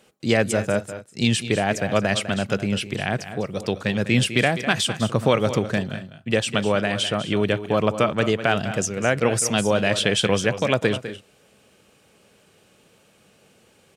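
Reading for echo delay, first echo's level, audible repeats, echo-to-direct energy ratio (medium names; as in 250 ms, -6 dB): 202 ms, -12.0 dB, 2, -11.0 dB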